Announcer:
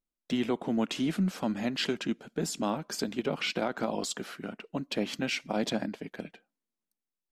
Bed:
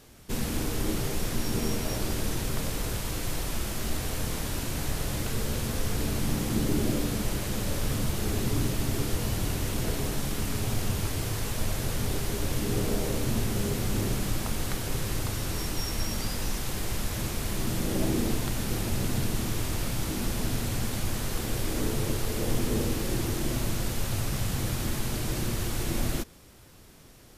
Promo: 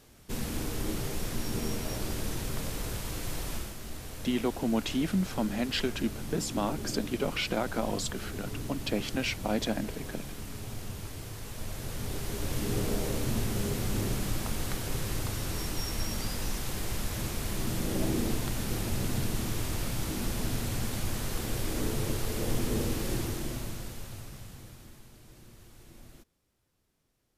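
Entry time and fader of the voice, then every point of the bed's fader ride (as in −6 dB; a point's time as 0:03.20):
3.95 s, 0.0 dB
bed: 0:03.55 −4 dB
0:03.77 −10.5 dB
0:11.40 −10.5 dB
0:12.65 −2.5 dB
0:23.14 −2.5 dB
0:25.12 −23.5 dB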